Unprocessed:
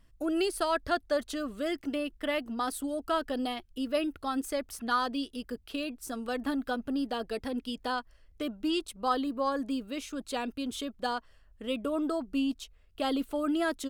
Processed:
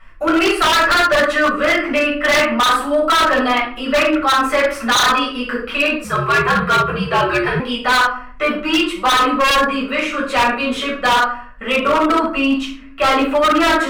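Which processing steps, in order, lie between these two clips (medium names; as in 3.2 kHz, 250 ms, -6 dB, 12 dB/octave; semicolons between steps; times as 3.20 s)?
simulated room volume 470 m³, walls furnished, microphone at 6.6 m; 6.04–7.60 s: frequency shift -90 Hz; high-order bell 1.6 kHz +12 dB; overdrive pedal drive 10 dB, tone 2.1 kHz, clips at -7.5 dBFS; wavefolder -13 dBFS; trim +4.5 dB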